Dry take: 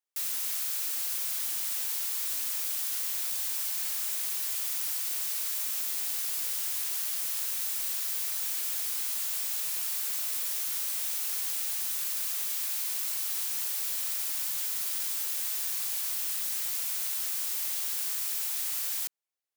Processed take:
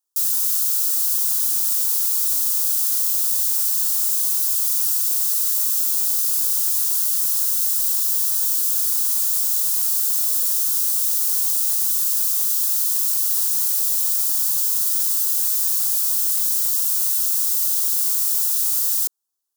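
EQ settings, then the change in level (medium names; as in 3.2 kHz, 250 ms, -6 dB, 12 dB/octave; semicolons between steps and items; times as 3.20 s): tone controls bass -1 dB, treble +7 dB; static phaser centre 600 Hz, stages 6; +5.5 dB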